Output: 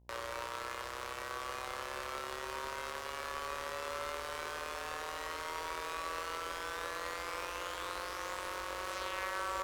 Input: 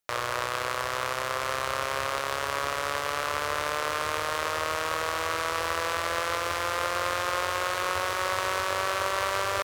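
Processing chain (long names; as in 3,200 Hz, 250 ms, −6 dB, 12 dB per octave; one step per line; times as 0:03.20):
frequency shifter −35 Hz
tuned comb filter 190 Hz, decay 0.19 s, harmonics all, mix 70%
hum with harmonics 60 Hz, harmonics 17, −59 dBFS −8 dB per octave
level −4.5 dB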